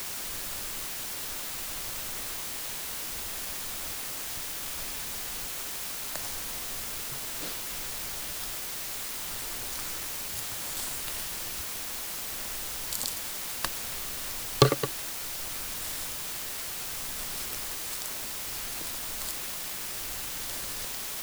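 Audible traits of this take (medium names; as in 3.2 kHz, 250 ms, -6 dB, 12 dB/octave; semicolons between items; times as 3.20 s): chopped level 0.65 Hz, depth 60%, duty 55%; a quantiser's noise floor 6-bit, dither triangular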